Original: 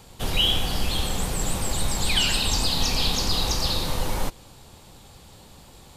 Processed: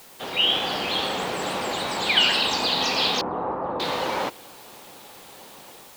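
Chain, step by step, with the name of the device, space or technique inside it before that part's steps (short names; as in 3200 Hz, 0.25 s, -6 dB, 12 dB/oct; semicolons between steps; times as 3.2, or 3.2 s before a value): dictaphone (BPF 350–3300 Hz; AGC gain up to 7 dB; wow and flutter; white noise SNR 23 dB); 3.21–3.8 LPF 1200 Hz 24 dB/oct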